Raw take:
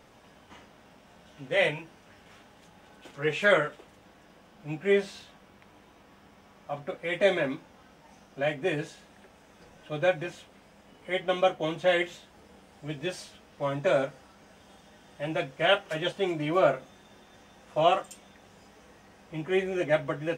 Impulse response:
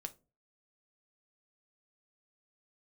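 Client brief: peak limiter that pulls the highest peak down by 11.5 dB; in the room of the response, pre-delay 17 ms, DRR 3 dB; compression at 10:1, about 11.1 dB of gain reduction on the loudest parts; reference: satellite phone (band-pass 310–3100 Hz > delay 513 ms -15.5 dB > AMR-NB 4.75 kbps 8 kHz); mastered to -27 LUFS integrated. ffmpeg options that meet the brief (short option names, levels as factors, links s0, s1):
-filter_complex "[0:a]acompressor=threshold=0.0398:ratio=10,alimiter=level_in=1.88:limit=0.0631:level=0:latency=1,volume=0.531,asplit=2[s0][s1];[1:a]atrim=start_sample=2205,adelay=17[s2];[s1][s2]afir=irnorm=-1:irlink=0,volume=1[s3];[s0][s3]amix=inputs=2:normalize=0,highpass=310,lowpass=3100,aecho=1:1:513:0.168,volume=6.31" -ar 8000 -c:a libopencore_amrnb -b:a 4750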